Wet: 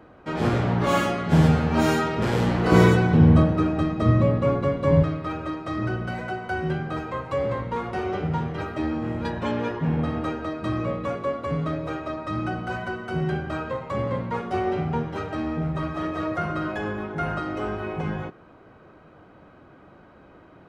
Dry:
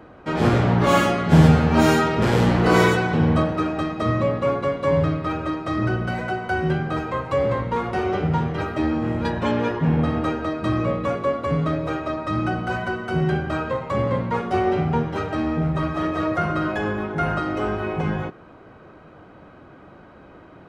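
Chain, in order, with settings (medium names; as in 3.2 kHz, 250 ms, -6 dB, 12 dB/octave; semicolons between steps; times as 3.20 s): 2.72–5.03 s: bass shelf 320 Hz +11.5 dB; trim -4.5 dB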